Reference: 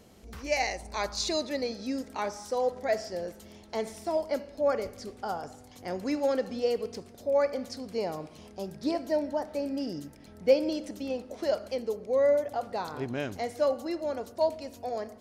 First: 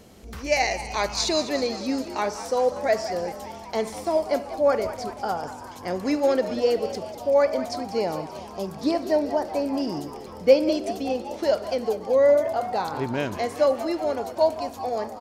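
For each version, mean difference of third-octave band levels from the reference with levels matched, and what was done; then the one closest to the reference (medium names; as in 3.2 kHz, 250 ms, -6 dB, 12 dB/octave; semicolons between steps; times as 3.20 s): 2.5 dB: on a send: frequency-shifting echo 192 ms, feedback 65%, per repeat +79 Hz, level -13 dB; on the sum: trim +6 dB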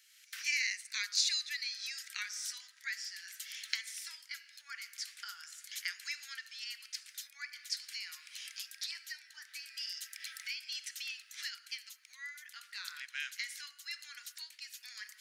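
20.0 dB: recorder AGC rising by 23 dB/s; steep high-pass 1.6 kHz 48 dB/octave; trim -1 dB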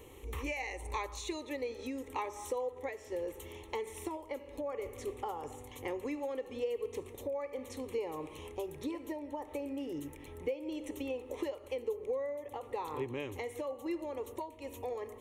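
6.0 dB: compression 16:1, threshold -37 dBFS, peak gain reduction 21.5 dB; static phaser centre 1 kHz, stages 8; trim +6.5 dB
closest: first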